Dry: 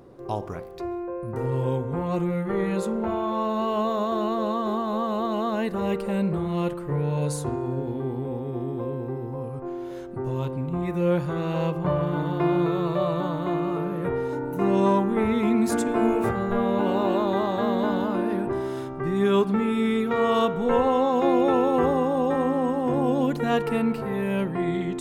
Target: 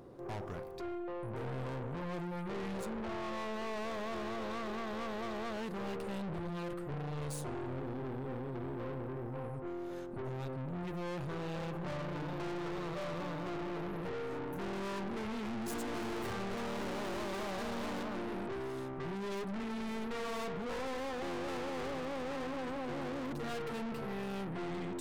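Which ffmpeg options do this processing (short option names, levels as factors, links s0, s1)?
-filter_complex "[0:a]asettb=1/sr,asplit=3[s0][s1][s2];[s0]atrim=end=15.664[s3];[s1]atrim=start=15.66:end=18.03,asetpts=PTS-STARTPTS,afade=t=in:d=0.004:c=qsin,afade=t=out:st=2.366:d=0.004:c=qsin,acontrast=41[s4];[s2]atrim=start=18.026[s5];[s3][s4]acrossfade=d=0.004:c1=hsin:c2=qsin[s6];[s6][s5]acrossfade=d=0.004:c1=qsin:c2=hsin,aeval=exprs='(tanh(56.2*val(0)+0.4)-tanh(0.4))/56.2':c=same,volume=0.708"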